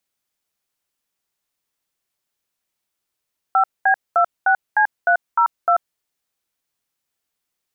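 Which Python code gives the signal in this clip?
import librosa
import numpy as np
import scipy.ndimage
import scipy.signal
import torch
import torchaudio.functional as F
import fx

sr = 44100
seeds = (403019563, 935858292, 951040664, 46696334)

y = fx.dtmf(sr, digits='5B26C302', tone_ms=88, gap_ms=216, level_db=-14.5)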